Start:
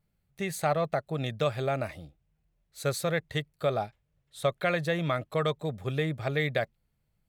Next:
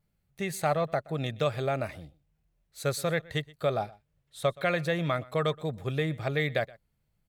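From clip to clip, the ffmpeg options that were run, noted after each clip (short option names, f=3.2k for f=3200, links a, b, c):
-af "aecho=1:1:123:0.075"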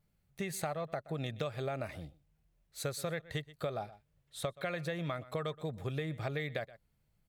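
-af "acompressor=threshold=-34dB:ratio=6"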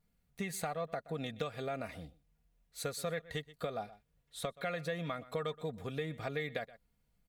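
-af "aecho=1:1:4.2:0.49,volume=-1.5dB"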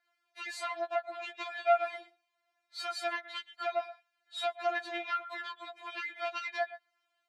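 -af "aeval=exprs='0.0794*sin(PI/2*2.82*val(0)/0.0794)':c=same,highpass=750,lowpass=3.8k,afftfilt=real='re*4*eq(mod(b,16),0)':imag='im*4*eq(mod(b,16),0)':win_size=2048:overlap=0.75"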